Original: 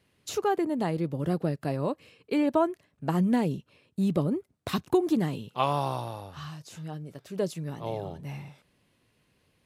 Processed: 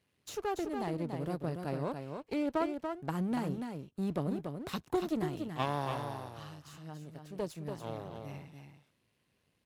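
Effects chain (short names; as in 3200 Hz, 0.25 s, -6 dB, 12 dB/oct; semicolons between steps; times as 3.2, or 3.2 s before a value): half-wave gain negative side -12 dB; HPF 44 Hz; echo 0.286 s -6 dB; gain -5 dB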